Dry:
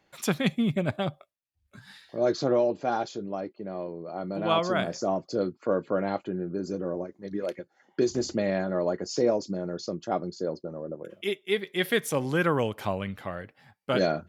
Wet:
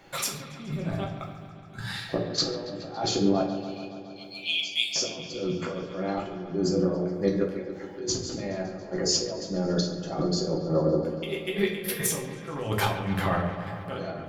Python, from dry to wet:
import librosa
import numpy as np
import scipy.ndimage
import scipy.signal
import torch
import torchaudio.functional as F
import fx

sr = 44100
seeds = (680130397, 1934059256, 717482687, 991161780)

y = fx.steep_highpass(x, sr, hz=2400.0, slope=96, at=(3.41, 4.96))
y = fx.over_compress(y, sr, threshold_db=-37.0, ratio=-1.0)
y = fx.step_gate(y, sr, bpm=101, pattern='xx..xxx.', floor_db=-12.0, edge_ms=4.5)
y = fx.echo_wet_lowpass(y, sr, ms=140, feedback_pct=75, hz=3400.0, wet_db=-11)
y = fx.room_shoebox(y, sr, seeds[0], volume_m3=54.0, walls='mixed', distance_m=0.73)
y = y * librosa.db_to_amplitude(4.5)